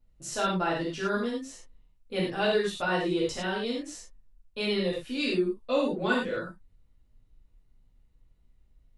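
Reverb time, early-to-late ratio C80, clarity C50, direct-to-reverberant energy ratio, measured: no single decay rate, 7.5 dB, 2.5 dB, -6.0 dB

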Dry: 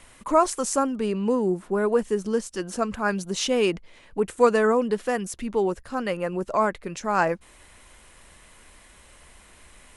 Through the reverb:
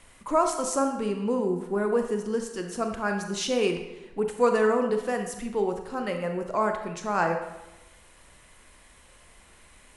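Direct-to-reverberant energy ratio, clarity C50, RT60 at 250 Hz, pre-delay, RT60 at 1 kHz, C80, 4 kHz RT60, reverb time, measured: 4.5 dB, 6.0 dB, 1.1 s, 26 ms, 1.0 s, 9.0 dB, 0.75 s, 1.0 s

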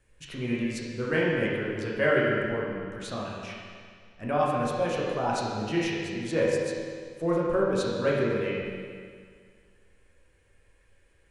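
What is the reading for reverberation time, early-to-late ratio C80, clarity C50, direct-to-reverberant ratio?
2.0 s, 0.5 dB, -1.5 dB, -5.5 dB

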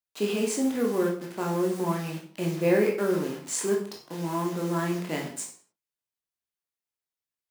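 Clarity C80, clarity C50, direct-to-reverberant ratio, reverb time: 11.0 dB, 7.0 dB, -1.0 dB, no single decay rate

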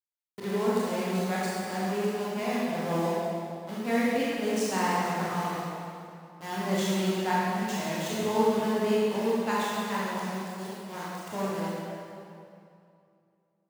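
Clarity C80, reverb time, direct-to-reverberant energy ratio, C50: -2.0 dB, 2.6 s, -8.0 dB, -4.0 dB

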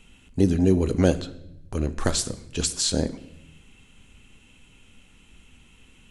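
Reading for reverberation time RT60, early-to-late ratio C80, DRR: 0.85 s, 18.5 dB, 11.0 dB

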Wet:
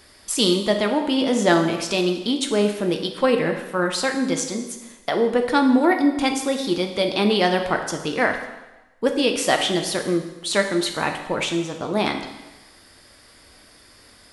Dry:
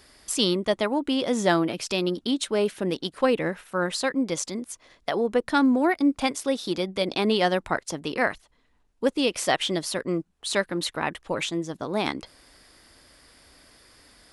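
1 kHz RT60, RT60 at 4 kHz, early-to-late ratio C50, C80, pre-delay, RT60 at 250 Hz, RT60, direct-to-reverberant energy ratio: 1.1 s, 1.1 s, 7.5 dB, 9.5 dB, 5 ms, 1.0 s, 1.1 s, 3.5 dB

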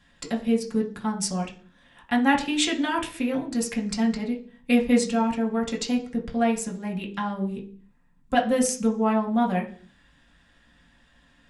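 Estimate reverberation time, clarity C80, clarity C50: 0.45 s, 17.0 dB, 12.0 dB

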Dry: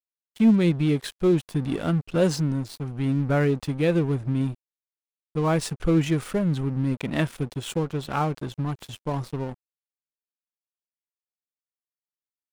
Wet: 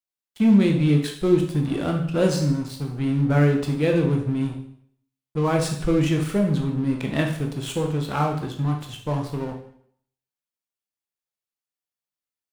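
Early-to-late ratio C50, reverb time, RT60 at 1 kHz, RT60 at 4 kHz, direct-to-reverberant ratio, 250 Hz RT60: 7.0 dB, 0.65 s, 0.65 s, 0.60 s, 2.0 dB, 0.65 s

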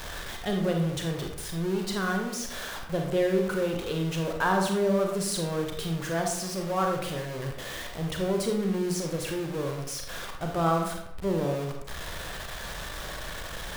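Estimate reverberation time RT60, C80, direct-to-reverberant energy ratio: 0.80 s, 7.5 dB, 2.0 dB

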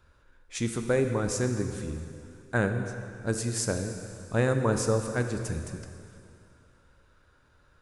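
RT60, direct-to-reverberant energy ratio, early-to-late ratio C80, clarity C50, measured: 2.5 s, 6.0 dB, 7.5 dB, 6.5 dB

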